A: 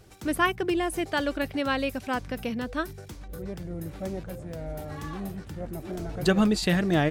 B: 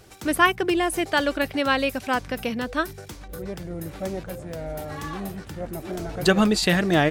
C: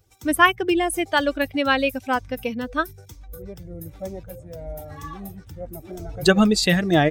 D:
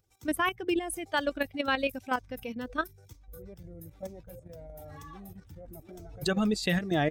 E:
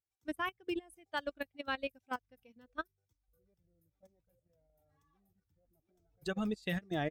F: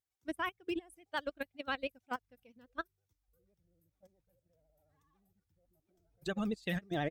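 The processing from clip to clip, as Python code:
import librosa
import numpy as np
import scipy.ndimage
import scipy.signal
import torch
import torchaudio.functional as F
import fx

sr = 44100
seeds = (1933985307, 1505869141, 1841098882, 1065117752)

y1 = fx.low_shelf(x, sr, hz=320.0, db=-6.5)
y1 = y1 * librosa.db_to_amplitude(6.5)
y2 = fx.bin_expand(y1, sr, power=1.5)
y2 = y2 * librosa.db_to_amplitude(4.0)
y3 = fx.level_steps(y2, sr, step_db=10)
y3 = y3 * librosa.db_to_amplitude(-5.5)
y4 = fx.upward_expand(y3, sr, threshold_db=-39.0, expansion=2.5)
y4 = y4 * librosa.db_to_amplitude(-7.0)
y5 = fx.vibrato(y4, sr, rate_hz=14.0, depth_cents=74.0)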